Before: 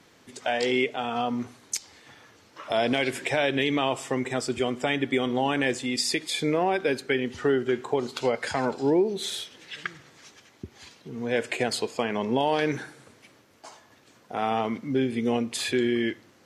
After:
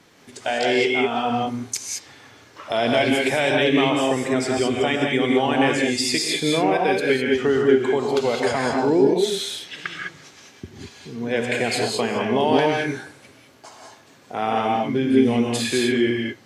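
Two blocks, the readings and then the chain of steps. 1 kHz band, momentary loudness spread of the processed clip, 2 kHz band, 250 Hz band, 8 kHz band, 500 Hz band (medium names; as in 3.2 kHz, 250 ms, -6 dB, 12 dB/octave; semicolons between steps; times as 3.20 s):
+6.0 dB, 13 LU, +6.0 dB, +6.5 dB, +5.5 dB, +6.5 dB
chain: gated-style reverb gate 230 ms rising, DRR -0.5 dB; trim +2.5 dB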